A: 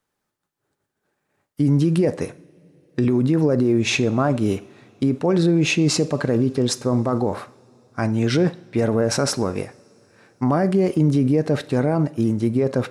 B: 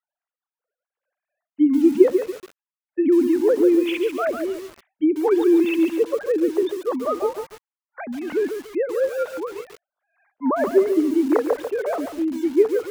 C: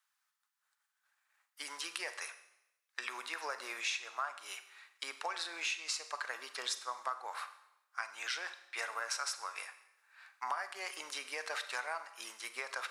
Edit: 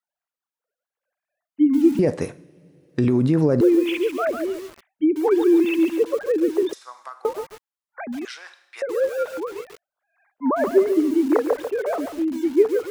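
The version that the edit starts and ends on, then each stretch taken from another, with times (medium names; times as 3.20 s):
B
1.99–3.61 s: from A
6.73–7.25 s: from C
8.25–8.82 s: from C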